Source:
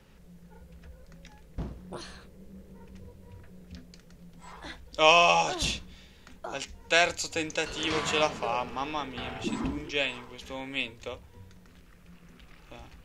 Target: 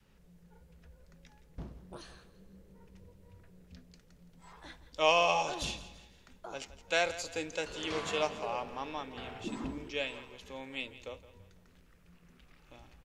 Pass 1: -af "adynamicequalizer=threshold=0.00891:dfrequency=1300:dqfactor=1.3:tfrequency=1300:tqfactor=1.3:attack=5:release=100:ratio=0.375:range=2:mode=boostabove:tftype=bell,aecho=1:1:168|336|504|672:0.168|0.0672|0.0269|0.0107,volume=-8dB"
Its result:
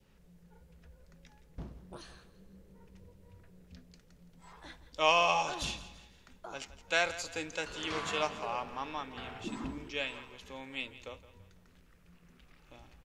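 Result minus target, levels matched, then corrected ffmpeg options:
500 Hz band -2.5 dB
-af "adynamicequalizer=threshold=0.00891:dfrequency=500:dqfactor=1.3:tfrequency=500:tqfactor=1.3:attack=5:release=100:ratio=0.375:range=2:mode=boostabove:tftype=bell,aecho=1:1:168|336|504|672:0.168|0.0672|0.0269|0.0107,volume=-8dB"

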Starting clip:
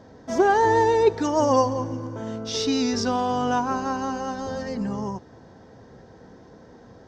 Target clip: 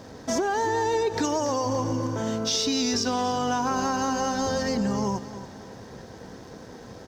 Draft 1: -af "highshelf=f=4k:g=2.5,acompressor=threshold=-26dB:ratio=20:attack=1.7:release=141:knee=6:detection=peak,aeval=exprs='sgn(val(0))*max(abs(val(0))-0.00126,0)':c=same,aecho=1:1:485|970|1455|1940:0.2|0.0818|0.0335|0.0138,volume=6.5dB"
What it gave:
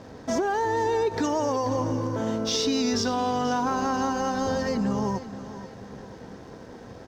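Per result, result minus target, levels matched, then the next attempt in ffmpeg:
echo 0.201 s late; 8000 Hz band -4.0 dB
-af "highshelf=f=4k:g=2.5,acompressor=threshold=-26dB:ratio=20:attack=1.7:release=141:knee=6:detection=peak,aeval=exprs='sgn(val(0))*max(abs(val(0))-0.00126,0)':c=same,aecho=1:1:284|568|852|1136:0.2|0.0818|0.0335|0.0138,volume=6.5dB"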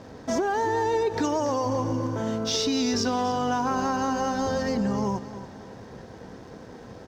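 8000 Hz band -4.0 dB
-af "highshelf=f=4k:g=11.5,acompressor=threshold=-26dB:ratio=20:attack=1.7:release=141:knee=6:detection=peak,aeval=exprs='sgn(val(0))*max(abs(val(0))-0.00126,0)':c=same,aecho=1:1:284|568|852|1136:0.2|0.0818|0.0335|0.0138,volume=6.5dB"

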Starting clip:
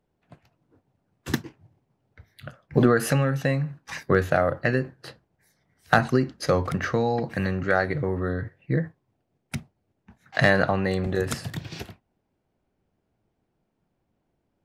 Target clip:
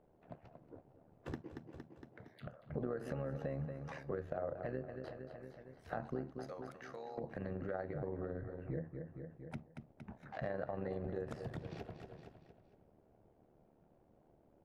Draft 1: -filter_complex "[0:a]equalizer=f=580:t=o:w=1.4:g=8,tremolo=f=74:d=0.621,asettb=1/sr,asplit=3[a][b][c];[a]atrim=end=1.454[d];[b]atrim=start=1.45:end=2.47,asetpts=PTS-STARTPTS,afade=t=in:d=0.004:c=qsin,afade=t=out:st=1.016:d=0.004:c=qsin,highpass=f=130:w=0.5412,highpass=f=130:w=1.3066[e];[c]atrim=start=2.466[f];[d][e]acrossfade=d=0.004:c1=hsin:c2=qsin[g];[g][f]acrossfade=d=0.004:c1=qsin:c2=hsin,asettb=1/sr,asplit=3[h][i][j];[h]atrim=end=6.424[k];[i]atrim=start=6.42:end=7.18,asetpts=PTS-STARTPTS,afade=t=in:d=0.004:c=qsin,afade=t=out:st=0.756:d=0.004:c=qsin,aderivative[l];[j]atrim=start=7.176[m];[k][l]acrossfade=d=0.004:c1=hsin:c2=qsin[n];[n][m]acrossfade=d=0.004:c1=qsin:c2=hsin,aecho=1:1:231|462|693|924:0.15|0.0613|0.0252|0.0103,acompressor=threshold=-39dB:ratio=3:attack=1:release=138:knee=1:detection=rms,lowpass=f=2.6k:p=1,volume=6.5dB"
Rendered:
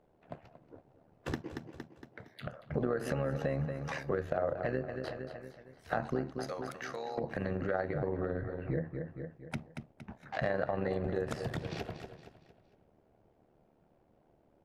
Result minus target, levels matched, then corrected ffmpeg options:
compressor: peak gain reduction -6.5 dB; 2000 Hz band +3.0 dB
-filter_complex "[0:a]equalizer=f=580:t=o:w=1.4:g=8,tremolo=f=74:d=0.621,asettb=1/sr,asplit=3[a][b][c];[a]atrim=end=1.454[d];[b]atrim=start=1.45:end=2.47,asetpts=PTS-STARTPTS,afade=t=in:d=0.004:c=qsin,afade=t=out:st=1.016:d=0.004:c=qsin,highpass=f=130:w=0.5412,highpass=f=130:w=1.3066[e];[c]atrim=start=2.466[f];[d][e]acrossfade=d=0.004:c1=hsin:c2=qsin[g];[g][f]acrossfade=d=0.004:c1=qsin:c2=hsin,asettb=1/sr,asplit=3[h][i][j];[h]atrim=end=6.424[k];[i]atrim=start=6.42:end=7.18,asetpts=PTS-STARTPTS,afade=t=in:d=0.004:c=qsin,afade=t=out:st=0.756:d=0.004:c=qsin,aderivative[l];[j]atrim=start=7.176[m];[k][l]acrossfade=d=0.004:c1=hsin:c2=qsin[n];[n][m]acrossfade=d=0.004:c1=qsin:c2=hsin,aecho=1:1:231|462|693|924:0.15|0.0613|0.0252|0.0103,acompressor=threshold=-49dB:ratio=3:attack=1:release=138:knee=1:detection=rms,lowpass=f=980:p=1,volume=6.5dB"

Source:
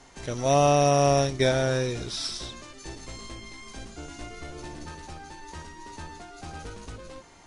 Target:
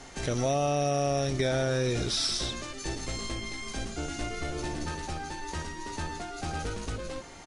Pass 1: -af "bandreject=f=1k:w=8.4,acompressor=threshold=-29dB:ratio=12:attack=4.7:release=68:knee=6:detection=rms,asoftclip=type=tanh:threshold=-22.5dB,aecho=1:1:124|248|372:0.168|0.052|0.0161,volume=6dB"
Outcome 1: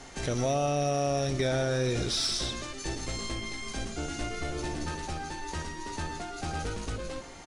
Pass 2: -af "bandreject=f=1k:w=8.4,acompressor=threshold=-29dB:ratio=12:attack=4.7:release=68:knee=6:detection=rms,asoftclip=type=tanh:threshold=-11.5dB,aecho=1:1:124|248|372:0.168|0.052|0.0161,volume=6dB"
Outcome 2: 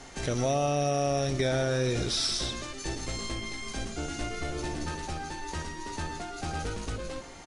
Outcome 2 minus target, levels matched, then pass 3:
echo-to-direct +9 dB
-af "bandreject=f=1k:w=8.4,acompressor=threshold=-29dB:ratio=12:attack=4.7:release=68:knee=6:detection=rms,asoftclip=type=tanh:threshold=-11.5dB,aecho=1:1:124|248:0.0596|0.0185,volume=6dB"

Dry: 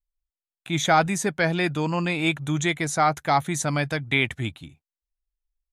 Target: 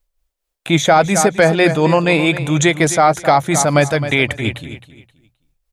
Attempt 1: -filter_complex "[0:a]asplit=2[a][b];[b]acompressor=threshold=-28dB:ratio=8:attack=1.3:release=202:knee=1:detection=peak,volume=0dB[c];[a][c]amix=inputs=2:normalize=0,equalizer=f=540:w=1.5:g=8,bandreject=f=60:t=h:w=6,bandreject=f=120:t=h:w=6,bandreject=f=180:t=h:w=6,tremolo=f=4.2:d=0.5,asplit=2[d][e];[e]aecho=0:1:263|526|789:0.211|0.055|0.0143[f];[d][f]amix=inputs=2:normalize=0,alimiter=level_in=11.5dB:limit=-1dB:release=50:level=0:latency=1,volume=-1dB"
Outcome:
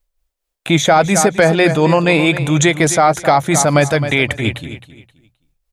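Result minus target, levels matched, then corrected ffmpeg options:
compressor: peak gain reduction -9.5 dB
-filter_complex "[0:a]asplit=2[a][b];[b]acompressor=threshold=-39dB:ratio=8:attack=1.3:release=202:knee=1:detection=peak,volume=0dB[c];[a][c]amix=inputs=2:normalize=0,equalizer=f=540:w=1.5:g=8,bandreject=f=60:t=h:w=6,bandreject=f=120:t=h:w=6,bandreject=f=180:t=h:w=6,tremolo=f=4.2:d=0.5,asplit=2[d][e];[e]aecho=0:1:263|526|789:0.211|0.055|0.0143[f];[d][f]amix=inputs=2:normalize=0,alimiter=level_in=11.5dB:limit=-1dB:release=50:level=0:latency=1,volume=-1dB"

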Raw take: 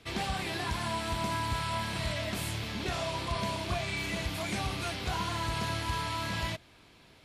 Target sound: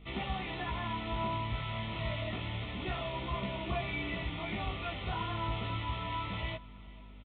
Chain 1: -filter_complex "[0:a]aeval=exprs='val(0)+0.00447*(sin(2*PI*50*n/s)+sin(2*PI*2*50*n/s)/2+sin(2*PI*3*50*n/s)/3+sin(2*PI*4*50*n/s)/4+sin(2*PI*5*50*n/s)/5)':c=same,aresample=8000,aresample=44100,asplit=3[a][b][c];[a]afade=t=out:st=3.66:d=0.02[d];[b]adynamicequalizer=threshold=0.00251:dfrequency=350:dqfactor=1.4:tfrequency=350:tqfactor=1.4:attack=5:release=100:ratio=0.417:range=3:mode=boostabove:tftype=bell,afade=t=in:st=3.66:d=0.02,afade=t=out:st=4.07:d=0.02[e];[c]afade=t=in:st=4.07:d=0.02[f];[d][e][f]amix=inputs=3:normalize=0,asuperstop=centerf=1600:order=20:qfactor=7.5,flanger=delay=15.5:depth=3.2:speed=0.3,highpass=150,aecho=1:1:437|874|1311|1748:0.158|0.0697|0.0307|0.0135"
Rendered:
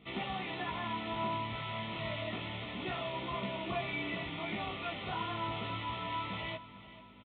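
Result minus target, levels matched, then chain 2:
125 Hz band -5.0 dB; echo-to-direct +6 dB
-filter_complex "[0:a]aeval=exprs='val(0)+0.00447*(sin(2*PI*50*n/s)+sin(2*PI*2*50*n/s)/2+sin(2*PI*3*50*n/s)/3+sin(2*PI*4*50*n/s)/4+sin(2*PI*5*50*n/s)/5)':c=same,aresample=8000,aresample=44100,asplit=3[a][b][c];[a]afade=t=out:st=3.66:d=0.02[d];[b]adynamicequalizer=threshold=0.00251:dfrequency=350:dqfactor=1.4:tfrequency=350:tqfactor=1.4:attack=5:release=100:ratio=0.417:range=3:mode=boostabove:tftype=bell,afade=t=in:st=3.66:d=0.02,afade=t=out:st=4.07:d=0.02[e];[c]afade=t=in:st=4.07:d=0.02[f];[d][e][f]amix=inputs=3:normalize=0,asuperstop=centerf=1600:order=20:qfactor=7.5,flanger=delay=15.5:depth=3.2:speed=0.3,aecho=1:1:437|874|1311:0.0794|0.035|0.0154"

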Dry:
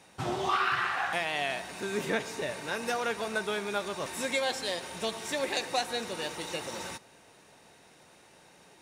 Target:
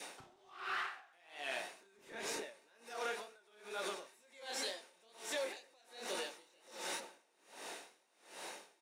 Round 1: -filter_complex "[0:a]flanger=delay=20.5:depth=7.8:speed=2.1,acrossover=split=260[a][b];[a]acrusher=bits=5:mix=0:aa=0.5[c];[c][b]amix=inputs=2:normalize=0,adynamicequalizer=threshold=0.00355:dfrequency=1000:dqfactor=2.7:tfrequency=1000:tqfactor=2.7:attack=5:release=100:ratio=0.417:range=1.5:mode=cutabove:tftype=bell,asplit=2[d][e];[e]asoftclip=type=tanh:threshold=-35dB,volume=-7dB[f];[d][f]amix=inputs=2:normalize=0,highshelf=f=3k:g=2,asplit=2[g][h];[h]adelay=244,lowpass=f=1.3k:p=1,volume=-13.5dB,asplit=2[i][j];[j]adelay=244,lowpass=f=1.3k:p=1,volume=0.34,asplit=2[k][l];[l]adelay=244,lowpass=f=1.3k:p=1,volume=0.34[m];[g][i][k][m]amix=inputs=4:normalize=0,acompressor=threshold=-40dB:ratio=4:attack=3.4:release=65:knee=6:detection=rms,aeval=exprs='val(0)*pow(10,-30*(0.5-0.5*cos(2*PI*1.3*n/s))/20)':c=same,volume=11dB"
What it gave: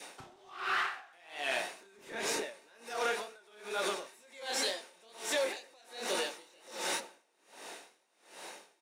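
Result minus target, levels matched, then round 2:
compressor: peak gain reduction -8 dB; soft clip: distortion +7 dB
-filter_complex "[0:a]flanger=delay=20.5:depth=7.8:speed=2.1,acrossover=split=260[a][b];[a]acrusher=bits=5:mix=0:aa=0.5[c];[c][b]amix=inputs=2:normalize=0,adynamicequalizer=threshold=0.00355:dfrequency=1000:dqfactor=2.7:tfrequency=1000:tqfactor=2.7:attack=5:release=100:ratio=0.417:range=1.5:mode=cutabove:tftype=bell,asplit=2[d][e];[e]asoftclip=type=tanh:threshold=-28dB,volume=-7dB[f];[d][f]amix=inputs=2:normalize=0,highshelf=f=3k:g=2,asplit=2[g][h];[h]adelay=244,lowpass=f=1.3k:p=1,volume=-13.5dB,asplit=2[i][j];[j]adelay=244,lowpass=f=1.3k:p=1,volume=0.34,asplit=2[k][l];[l]adelay=244,lowpass=f=1.3k:p=1,volume=0.34[m];[g][i][k][m]amix=inputs=4:normalize=0,acompressor=threshold=-50dB:ratio=4:attack=3.4:release=65:knee=6:detection=rms,aeval=exprs='val(0)*pow(10,-30*(0.5-0.5*cos(2*PI*1.3*n/s))/20)':c=same,volume=11dB"

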